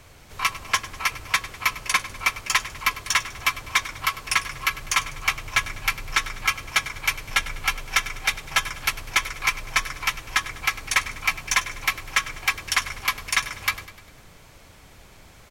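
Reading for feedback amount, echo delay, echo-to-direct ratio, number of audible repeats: 52%, 100 ms, −14.5 dB, 4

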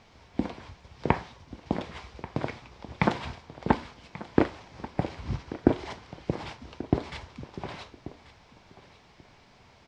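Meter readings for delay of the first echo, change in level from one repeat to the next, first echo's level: 1,136 ms, −16.0 dB, −16.5 dB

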